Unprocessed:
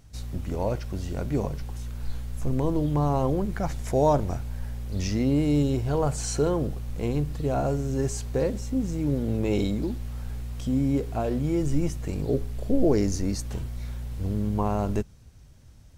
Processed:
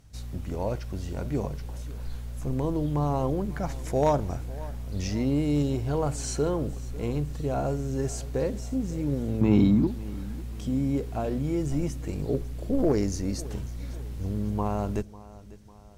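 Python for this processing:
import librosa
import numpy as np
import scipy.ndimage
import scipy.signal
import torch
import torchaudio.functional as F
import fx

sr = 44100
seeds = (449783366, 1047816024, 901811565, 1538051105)

y = fx.cheby_harmonics(x, sr, harmonics=(3, 5), levels_db=(-17, -28), full_scale_db=-10.0)
y = fx.graphic_eq_10(y, sr, hz=(125, 250, 500, 1000, 8000), db=(8, 12, -7, 10, -10), at=(9.41, 9.87))
y = fx.echo_feedback(y, sr, ms=548, feedback_pct=49, wet_db=-19)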